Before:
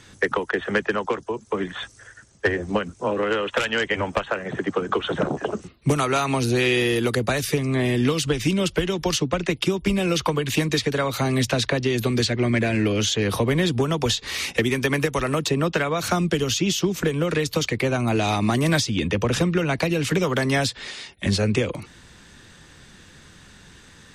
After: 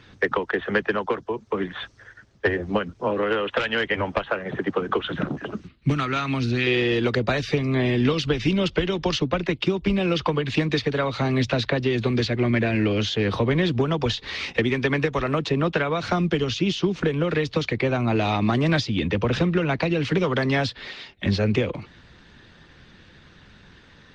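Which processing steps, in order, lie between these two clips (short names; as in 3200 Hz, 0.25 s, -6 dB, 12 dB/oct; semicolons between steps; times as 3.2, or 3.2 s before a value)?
LPF 4700 Hz 24 dB/oct; 5.02–6.67 band shelf 630 Hz -8.5 dB; Opus 24 kbps 48000 Hz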